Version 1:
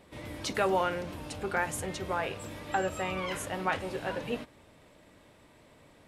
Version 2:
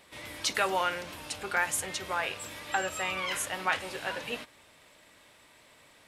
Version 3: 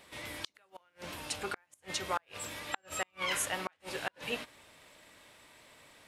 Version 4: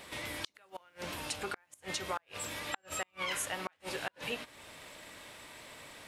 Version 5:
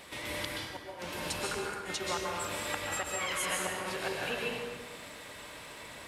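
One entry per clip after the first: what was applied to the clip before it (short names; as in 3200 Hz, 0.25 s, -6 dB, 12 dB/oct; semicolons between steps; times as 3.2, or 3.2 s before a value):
tilt shelf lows -8 dB, about 780 Hz; gain -1 dB
flipped gate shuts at -19 dBFS, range -40 dB
compressor 2:1, threshold -49 dBFS, peak gain reduction 12 dB; gain +7.5 dB
reverb RT60 1.7 s, pre-delay 0.118 s, DRR -2.5 dB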